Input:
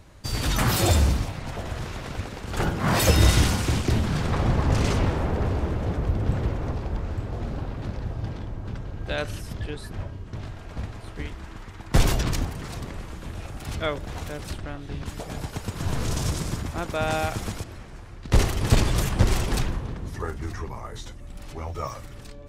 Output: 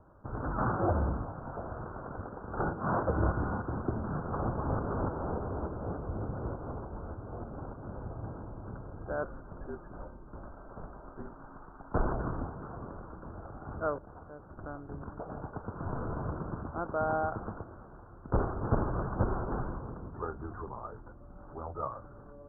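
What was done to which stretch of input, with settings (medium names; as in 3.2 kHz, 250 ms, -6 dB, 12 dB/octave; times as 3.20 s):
2.73–7.91 s: tremolo saw up 3.4 Hz, depth 45%
9.23–12.09 s: frequency shift -52 Hz
13.98–14.57 s: gain -7.5 dB
whole clip: steep low-pass 1.5 kHz 96 dB/octave; bass shelf 180 Hz -10 dB; trim -3 dB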